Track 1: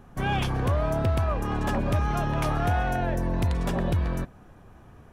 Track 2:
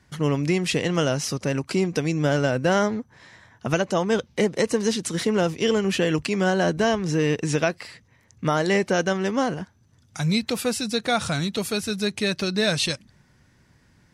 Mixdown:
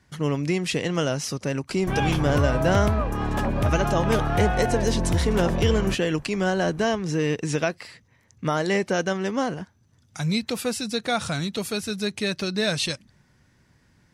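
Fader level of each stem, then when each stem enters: +1.5, −2.0 decibels; 1.70, 0.00 seconds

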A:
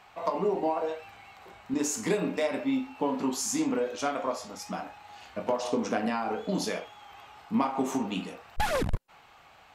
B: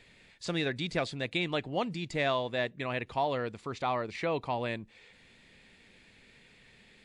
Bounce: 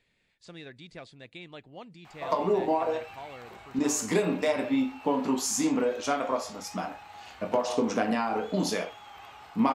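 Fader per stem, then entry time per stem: +2.0, −13.5 decibels; 2.05, 0.00 seconds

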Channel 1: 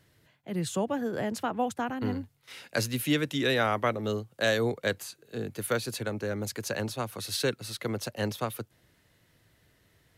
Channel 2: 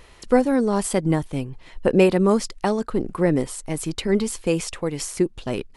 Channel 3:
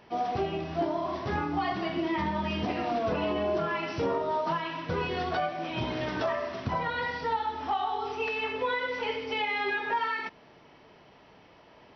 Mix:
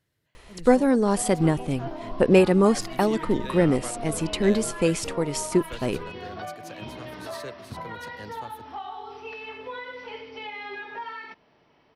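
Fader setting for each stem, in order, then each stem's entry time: −12.0, −0.5, −7.0 decibels; 0.00, 0.35, 1.05 seconds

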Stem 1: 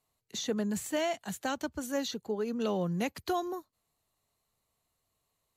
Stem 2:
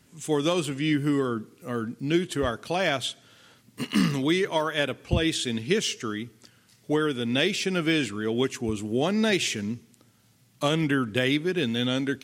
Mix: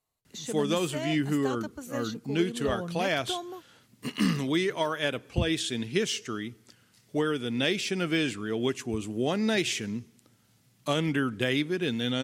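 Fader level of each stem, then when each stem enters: −4.0, −3.0 decibels; 0.00, 0.25 seconds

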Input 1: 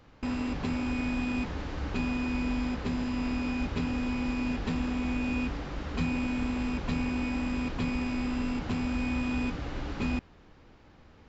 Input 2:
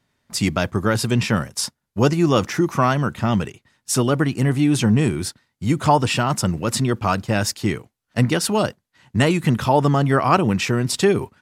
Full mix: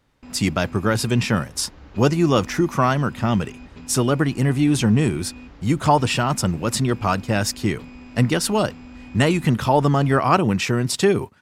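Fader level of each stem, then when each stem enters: −10.0, −0.5 decibels; 0.00, 0.00 seconds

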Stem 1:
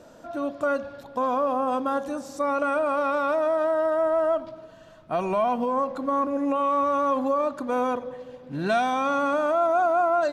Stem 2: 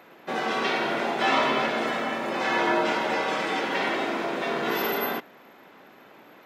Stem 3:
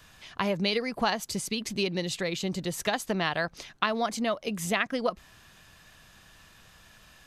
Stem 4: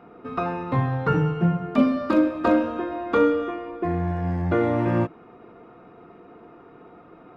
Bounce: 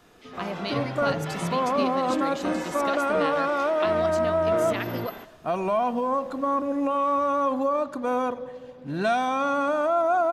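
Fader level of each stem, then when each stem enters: −0.5, −13.0, −6.0, −10.5 decibels; 0.35, 0.05, 0.00, 0.00 seconds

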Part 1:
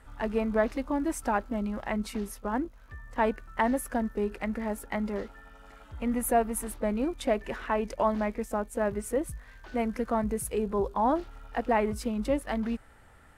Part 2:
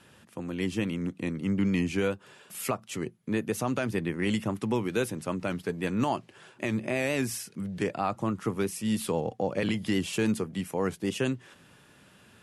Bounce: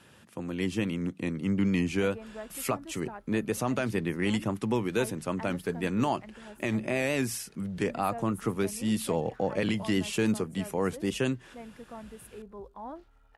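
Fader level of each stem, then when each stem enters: −16.0, 0.0 decibels; 1.80, 0.00 seconds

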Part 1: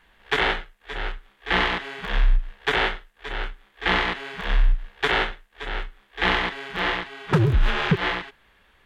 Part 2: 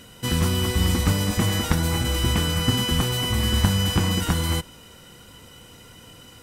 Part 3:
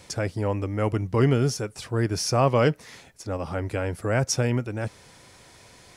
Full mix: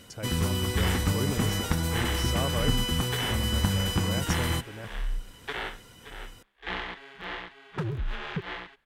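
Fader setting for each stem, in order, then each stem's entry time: −12.5, −5.5, −12.0 decibels; 0.45, 0.00, 0.00 seconds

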